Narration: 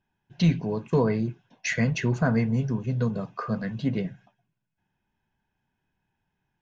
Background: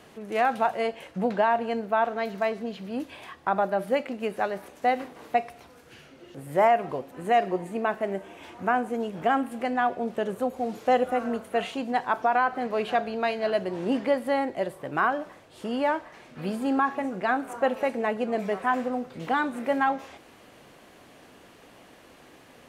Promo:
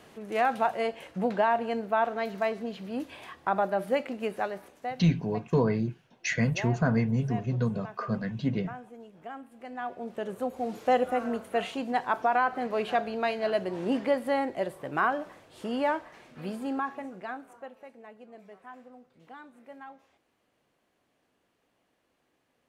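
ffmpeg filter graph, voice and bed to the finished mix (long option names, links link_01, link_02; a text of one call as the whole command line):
ffmpeg -i stem1.wav -i stem2.wav -filter_complex "[0:a]adelay=4600,volume=-2dB[link_01];[1:a]volume=14dB,afade=type=out:start_time=4.27:duration=0.79:silence=0.158489,afade=type=in:start_time=9.55:duration=1.21:silence=0.158489,afade=type=out:start_time=15.84:duration=1.88:silence=0.1[link_02];[link_01][link_02]amix=inputs=2:normalize=0" out.wav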